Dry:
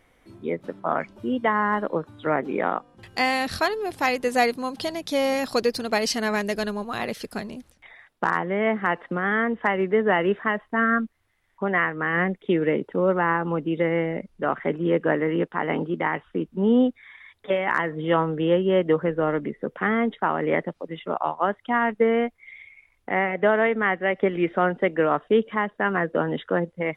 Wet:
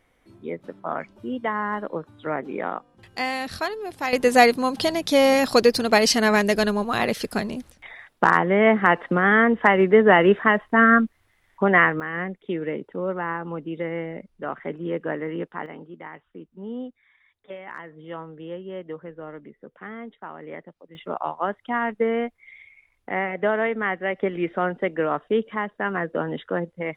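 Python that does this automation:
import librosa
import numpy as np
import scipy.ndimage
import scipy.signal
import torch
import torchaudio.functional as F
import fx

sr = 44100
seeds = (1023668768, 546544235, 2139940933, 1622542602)

y = fx.gain(x, sr, db=fx.steps((0.0, -4.0), (4.13, 6.0), (12.0, -6.0), (15.66, -14.5), (20.95, -2.5)))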